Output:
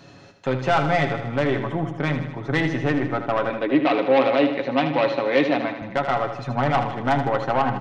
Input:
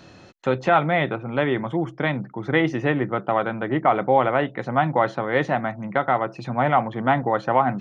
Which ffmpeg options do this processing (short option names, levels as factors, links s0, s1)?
-filter_complex "[0:a]aecho=1:1:7.2:0.51,aeval=exprs='(tanh(5.01*val(0)+0.35)-tanh(0.35))/5.01':c=same,asettb=1/sr,asplit=3[s0][s1][s2];[s0]atrim=end=3.504[s3];[s1]atrim=start=3.5:end=5.82,asetpts=PTS-STARTPTS,afade=t=in:d=0.004:c=qsin,afade=t=out:st=2.316:d=0.004:c=qsin,highpass=210,equalizer=f=290:t=q:w=4:g=9,equalizer=f=520:t=q:w=4:g=5,equalizer=f=780:t=q:w=4:g=-3,equalizer=f=1400:t=q:w=4:g=-5,equalizer=f=2500:t=q:w=4:g=9,equalizer=f=3900:t=q:w=4:g=9,lowpass=f=5600:w=0.5412,lowpass=f=5600:w=1.3066[s4];[s2]atrim=start=5.816[s5];[s3][s4]acrossfade=d=0.004:c1=hsin:c2=qsin[s6];[s6][s5]acrossfade=d=0.004:c1=qsin:c2=hsin,aecho=1:1:78|156|234|312|390|468|546:0.355|0.213|0.128|0.0766|0.046|0.0276|0.0166"